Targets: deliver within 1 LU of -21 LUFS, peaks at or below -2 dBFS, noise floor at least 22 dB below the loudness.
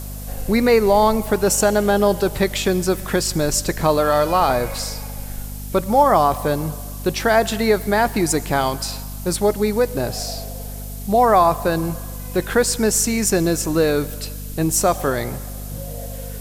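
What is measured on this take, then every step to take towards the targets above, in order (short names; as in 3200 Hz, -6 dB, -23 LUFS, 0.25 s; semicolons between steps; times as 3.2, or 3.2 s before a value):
hum 50 Hz; harmonics up to 250 Hz; hum level -29 dBFS; noise floor -31 dBFS; noise floor target -41 dBFS; loudness -19.0 LUFS; peak -3.0 dBFS; loudness target -21.0 LUFS
-> notches 50/100/150/200/250 Hz; denoiser 10 dB, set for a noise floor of -31 dBFS; gain -2 dB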